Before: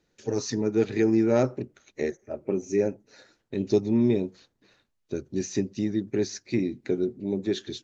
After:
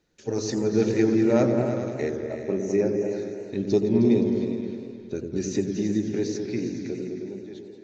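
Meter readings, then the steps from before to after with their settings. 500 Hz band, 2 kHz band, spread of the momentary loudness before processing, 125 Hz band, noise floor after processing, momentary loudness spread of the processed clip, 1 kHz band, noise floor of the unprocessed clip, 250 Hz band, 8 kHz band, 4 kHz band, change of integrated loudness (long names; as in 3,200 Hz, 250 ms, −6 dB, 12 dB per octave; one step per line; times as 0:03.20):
+2.0 dB, +1.0 dB, 13 LU, +2.5 dB, −43 dBFS, 14 LU, +2.0 dB, −75 dBFS, +2.5 dB, can't be measured, −1.5 dB, +2.0 dB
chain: fade-out on the ending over 2.07 s
echo whose low-pass opens from repeat to repeat 104 ms, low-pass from 400 Hz, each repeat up 2 octaves, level −3 dB
feedback echo with a swinging delay time 88 ms, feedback 77%, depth 208 cents, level −15 dB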